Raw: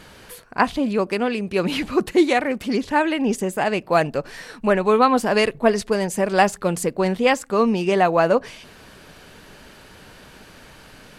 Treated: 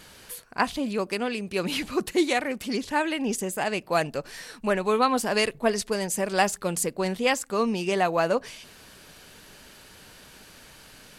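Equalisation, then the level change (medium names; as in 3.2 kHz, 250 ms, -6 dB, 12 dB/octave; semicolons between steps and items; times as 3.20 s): treble shelf 3.4 kHz +10.5 dB; -7.0 dB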